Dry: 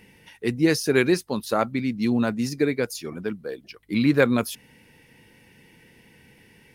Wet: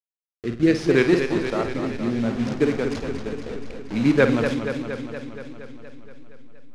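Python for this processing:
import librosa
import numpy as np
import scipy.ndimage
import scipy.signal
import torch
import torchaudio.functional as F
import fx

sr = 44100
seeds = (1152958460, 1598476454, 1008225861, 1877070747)

p1 = fx.delta_hold(x, sr, step_db=-26.0)
p2 = fx.rotary(p1, sr, hz=0.65)
p3 = fx.level_steps(p2, sr, step_db=20)
p4 = p2 + (p3 * 10.0 ** (-2.5 / 20.0))
p5 = fx.air_absorb(p4, sr, metres=100.0)
p6 = p5 + fx.room_flutter(p5, sr, wall_m=8.9, rt60_s=0.32, dry=0)
p7 = fx.echo_warbled(p6, sr, ms=235, feedback_pct=68, rate_hz=2.8, cents=100, wet_db=-7.5)
y = p7 * 10.0 ** (-1.5 / 20.0)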